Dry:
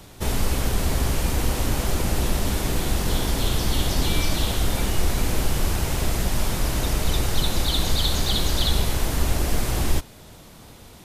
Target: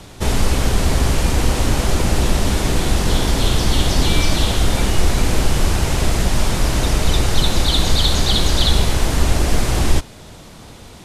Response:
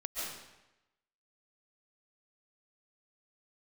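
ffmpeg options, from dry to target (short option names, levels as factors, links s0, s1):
-af "lowpass=9600,volume=2.11"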